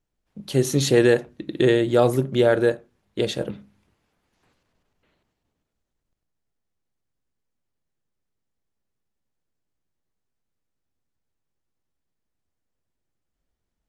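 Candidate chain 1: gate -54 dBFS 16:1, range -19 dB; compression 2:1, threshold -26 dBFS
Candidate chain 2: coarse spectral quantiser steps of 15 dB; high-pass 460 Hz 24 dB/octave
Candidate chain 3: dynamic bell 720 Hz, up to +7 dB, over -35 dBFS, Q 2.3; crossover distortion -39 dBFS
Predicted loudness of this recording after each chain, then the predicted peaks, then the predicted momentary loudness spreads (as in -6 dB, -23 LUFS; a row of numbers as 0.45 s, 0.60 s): -27.5 LUFS, -25.0 LUFS, -19.5 LUFS; -11.0 dBFS, -8.5 dBFS, -1.5 dBFS; 16 LU, 12 LU, 17 LU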